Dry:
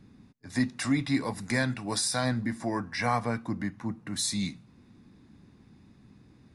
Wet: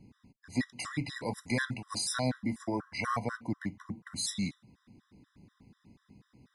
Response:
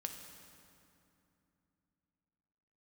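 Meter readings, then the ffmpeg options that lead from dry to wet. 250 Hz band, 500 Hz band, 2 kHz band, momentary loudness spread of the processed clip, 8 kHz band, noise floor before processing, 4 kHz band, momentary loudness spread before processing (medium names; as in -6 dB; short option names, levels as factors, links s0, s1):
-5.5 dB, -4.0 dB, -4.0 dB, 6 LU, -4.5 dB, -58 dBFS, -4.0 dB, 7 LU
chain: -af "afftfilt=real='re*gt(sin(2*PI*4.1*pts/sr)*(1-2*mod(floor(b*sr/1024/1000),2)),0)':imag='im*gt(sin(2*PI*4.1*pts/sr)*(1-2*mod(floor(b*sr/1024/1000),2)),0)':win_size=1024:overlap=0.75,volume=0.891"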